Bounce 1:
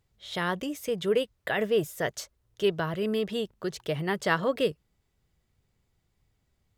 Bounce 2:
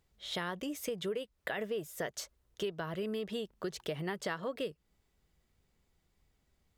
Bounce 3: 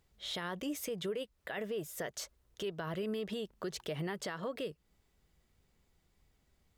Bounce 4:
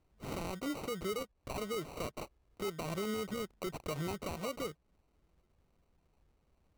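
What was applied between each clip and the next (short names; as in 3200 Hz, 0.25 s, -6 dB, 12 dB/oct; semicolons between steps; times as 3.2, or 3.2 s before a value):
bell 110 Hz -13 dB 0.4 oct; compressor 6:1, threshold -34 dBFS, peak gain reduction 14 dB
limiter -31.5 dBFS, peak gain reduction 9.5 dB; gain +2 dB
sample-and-hold 26×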